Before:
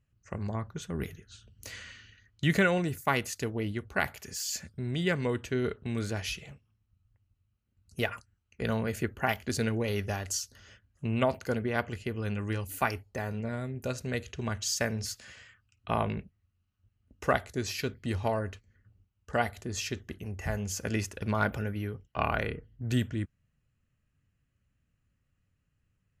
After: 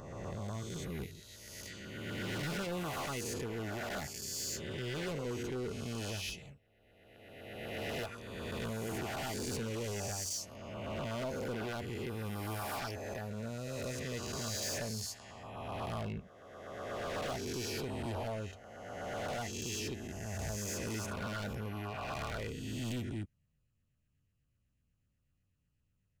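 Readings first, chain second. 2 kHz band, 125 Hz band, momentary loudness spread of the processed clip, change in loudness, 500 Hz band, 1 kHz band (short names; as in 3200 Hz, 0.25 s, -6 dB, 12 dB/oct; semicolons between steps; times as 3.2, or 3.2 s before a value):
-9.0 dB, -7.0 dB, 8 LU, -7.0 dB, -6.5 dB, -8.0 dB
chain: spectral swells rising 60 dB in 1.90 s; overloaded stage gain 27.5 dB; LFO notch saw down 8.1 Hz 920–2400 Hz; gain -7 dB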